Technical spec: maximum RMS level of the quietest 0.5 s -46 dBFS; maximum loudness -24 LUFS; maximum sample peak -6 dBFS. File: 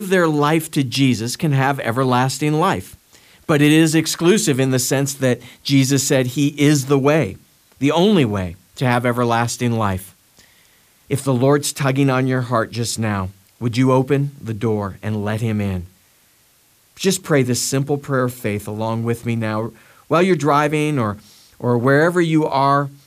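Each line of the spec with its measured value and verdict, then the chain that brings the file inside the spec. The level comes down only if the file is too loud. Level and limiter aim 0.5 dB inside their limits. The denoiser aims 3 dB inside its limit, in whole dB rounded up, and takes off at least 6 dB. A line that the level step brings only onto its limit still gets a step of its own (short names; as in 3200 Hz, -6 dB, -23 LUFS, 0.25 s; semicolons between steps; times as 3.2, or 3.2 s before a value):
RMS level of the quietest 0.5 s -56 dBFS: OK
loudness -18.0 LUFS: fail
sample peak -3.5 dBFS: fail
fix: gain -6.5 dB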